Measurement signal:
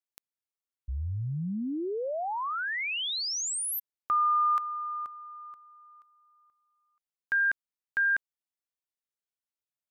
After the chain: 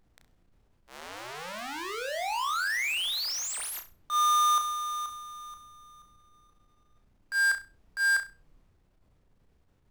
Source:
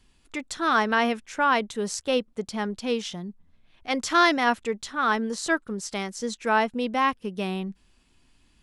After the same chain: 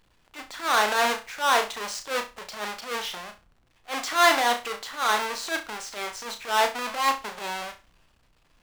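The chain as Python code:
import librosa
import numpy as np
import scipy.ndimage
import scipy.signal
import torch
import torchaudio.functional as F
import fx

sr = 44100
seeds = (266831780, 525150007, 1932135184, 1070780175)

p1 = fx.halfwave_hold(x, sr)
p2 = scipy.signal.sosfilt(scipy.signal.butter(2, 720.0, 'highpass', fs=sr, output='sos'), p1)
p3 = fx.high_shelf(p2, sr, hz=6700.0, db=-10.5)
p4 = fx.dmg_noise_colour(p3, sr, seeds[0], colour='brown', level_db=-64.0)
p5 = fx.transient(p4, sr, attack_db=-11, sustain_db=3)
y = p5 + fx.room_flutter(p5, sr, wall_m=5.7, rt60_s=0.28, dry=0)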